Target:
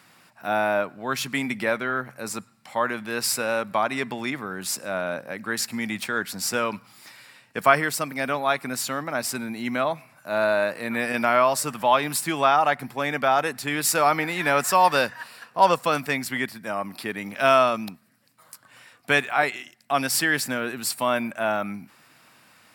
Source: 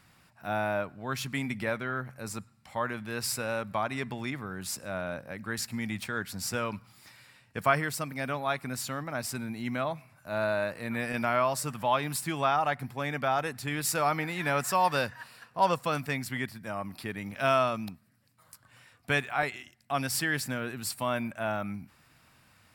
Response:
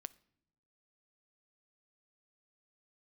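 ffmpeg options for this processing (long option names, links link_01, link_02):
-af "highpass=220,volume=7.5dB"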